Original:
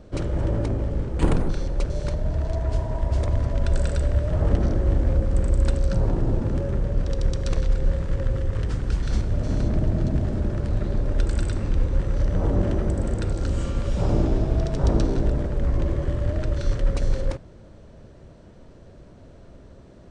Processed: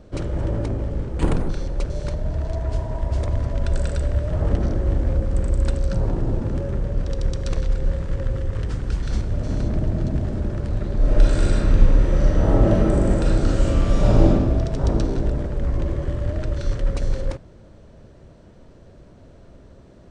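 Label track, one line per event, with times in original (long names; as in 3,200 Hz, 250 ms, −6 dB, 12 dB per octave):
10.970000	14.280000	thrown reverb, RT60 1.3 s, DRR −6 dB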